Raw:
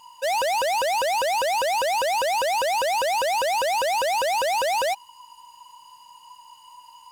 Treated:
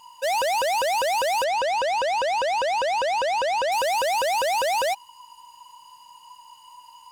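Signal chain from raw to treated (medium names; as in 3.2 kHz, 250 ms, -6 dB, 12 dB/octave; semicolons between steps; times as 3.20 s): 1.44–3.72 s: distance through air 81 m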